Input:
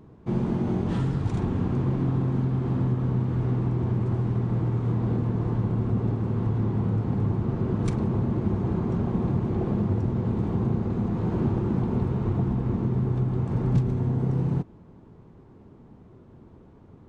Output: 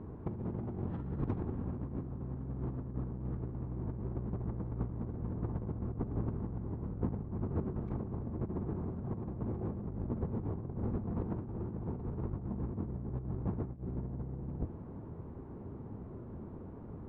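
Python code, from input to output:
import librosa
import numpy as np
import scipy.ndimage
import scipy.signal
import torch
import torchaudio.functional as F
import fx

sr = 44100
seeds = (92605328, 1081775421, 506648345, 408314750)

y = fx.octave_divider(x, sr, octaves=1, level_db=1.0)
y = scipy.signal.sosfilt(scipy.signal.butter(2, 1500.0, 'lowpass', fs=sr, output='sos'), y)
y = fx.low_shelf(y, sr, hz=64.0, db=-8.0)
y = fx.over_compress(y, sr, threshold_db=-30.0, ratio=-0.5)
y = F.gain(torch.from_numpy(y), -5.0).numpy()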